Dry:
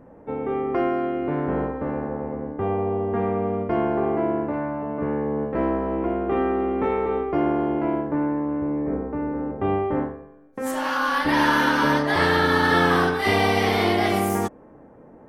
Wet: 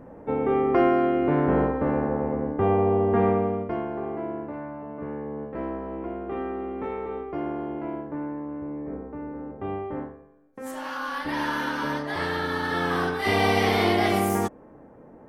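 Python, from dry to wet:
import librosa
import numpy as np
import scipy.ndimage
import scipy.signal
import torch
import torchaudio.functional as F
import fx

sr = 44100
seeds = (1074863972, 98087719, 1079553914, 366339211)

y = fx.gain(x, sr, db=fx.line((3.29, 3.0), (3.86, -8.5), (12.73, -8.5), (13.49, -1.0)))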